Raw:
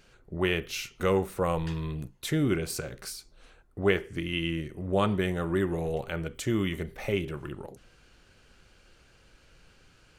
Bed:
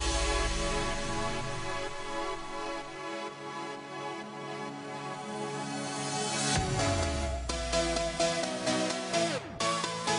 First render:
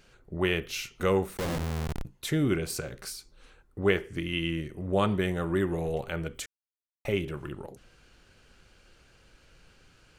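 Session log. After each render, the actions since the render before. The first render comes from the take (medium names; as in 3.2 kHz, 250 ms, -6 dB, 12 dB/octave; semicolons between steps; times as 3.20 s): 1.37–2.05 s: Schmitt trigger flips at -29 dBFS; 3.17–3.89 s: band-stop 670 Hz, Q 5.1; 6.46–7.05 s: mute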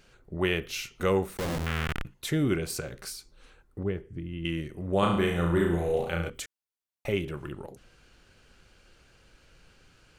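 1.66–2.14 s: high-order bell 2 kHz +12.5 dB; 3.83–4.45 s: FFT filter 130 Hz 0 dB, 1.2 kHz -15 dB, 6.1 kHz -21 dB; 4.99–6.30 s: flutter echo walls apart 6 m, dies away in 0.63 s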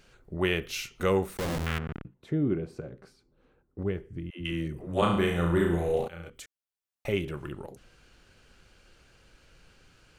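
1.78–3.79 s: band-pass filter 240 Hz, Q 0.63; 4.30–5.02 s: phase dispersion lows, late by 105 ms, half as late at 350 Hz; 6.08–7.15 s: fade in, from -16 dB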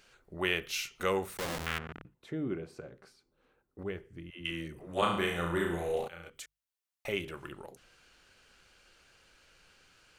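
bass shelf 450 Hz -11 dB; hum notches 50/100/150 Hz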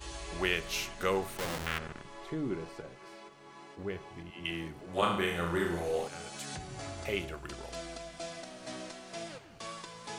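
add bed -13 dB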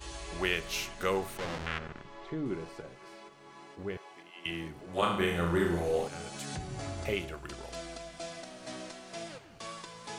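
1.38–2.46 s: distance through air 95 m; 3.97–4.46 s: high-pass 500 Hz; 5.20–7.14 s: bass shelf 450 Hz +5.5 dB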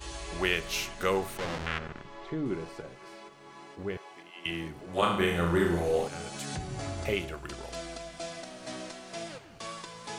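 trim +2.5 dB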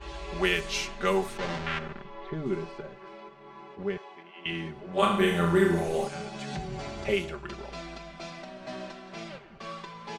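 level-controlled noise filter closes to 2.2 kHz, open at -24 dBFS; comb 5.1 ms, depth 76%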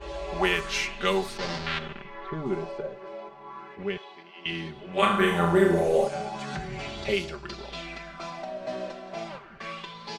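sweeping bell 0.34 Hz 520–4900 Hz +11 dB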